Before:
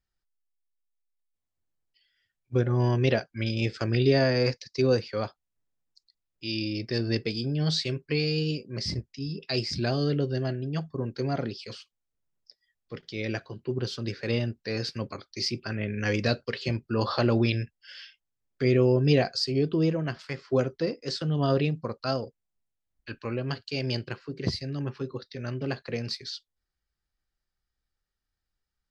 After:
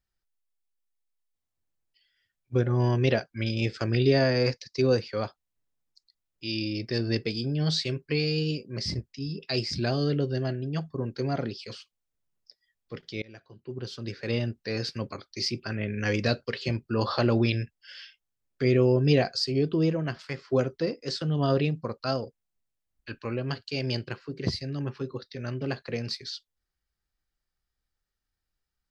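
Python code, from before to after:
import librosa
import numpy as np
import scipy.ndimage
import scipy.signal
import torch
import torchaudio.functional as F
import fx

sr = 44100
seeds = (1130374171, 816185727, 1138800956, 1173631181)

y = fx.edit(x, sr, fx.fade_in_from(start_s=13.22, length_s=1.26, floor_db=-24.0), tone=tone)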